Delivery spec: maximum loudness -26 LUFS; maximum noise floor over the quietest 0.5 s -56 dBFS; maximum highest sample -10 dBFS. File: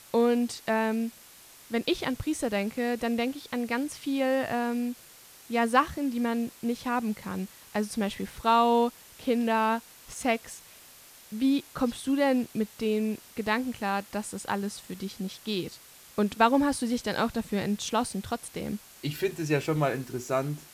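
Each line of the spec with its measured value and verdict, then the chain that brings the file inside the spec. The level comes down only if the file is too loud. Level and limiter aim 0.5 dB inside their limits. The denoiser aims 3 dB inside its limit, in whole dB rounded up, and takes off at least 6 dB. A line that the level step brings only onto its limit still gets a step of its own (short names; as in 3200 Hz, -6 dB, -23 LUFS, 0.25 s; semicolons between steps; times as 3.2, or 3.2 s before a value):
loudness -29.0 LUFS: OK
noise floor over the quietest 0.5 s -52 dBFS: fail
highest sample -9.0 dBFS: fail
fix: denoiser 7 dB, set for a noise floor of -52 dBFS; limiter -10.5 dBFS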